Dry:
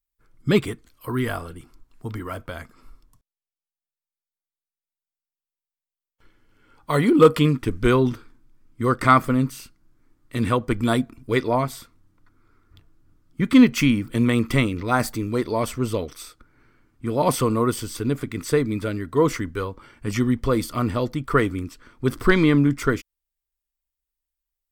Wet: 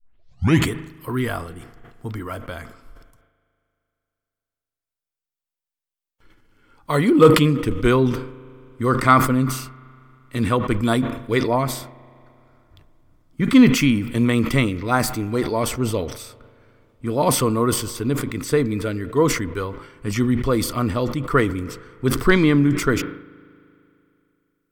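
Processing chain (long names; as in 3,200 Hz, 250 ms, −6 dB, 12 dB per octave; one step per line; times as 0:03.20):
turntable start at the beginning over 0.69 s
spring reverb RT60 2.8 s, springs 38 ms, chirp 80 ms, DRR 19.5 dB
level that may fall only so fast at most 81 dB per second
level +1 dB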